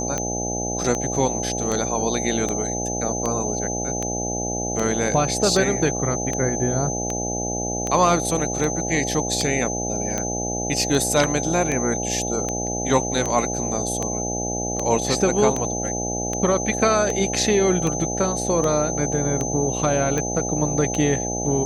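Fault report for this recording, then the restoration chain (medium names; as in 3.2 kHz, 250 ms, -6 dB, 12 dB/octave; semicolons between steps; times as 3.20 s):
buzz 60 Hz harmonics 14 -28 dBFS
tick 78 rpm -11 dBFS
whine 6.2 kHz -27 dBFS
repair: de-click; de-hum 60 Hz, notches 14; band-stop 6.2 kHz, Q 30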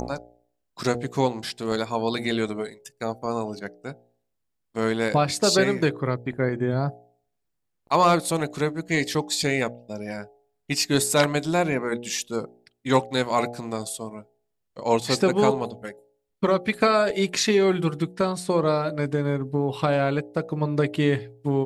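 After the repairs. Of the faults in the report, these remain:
nothing left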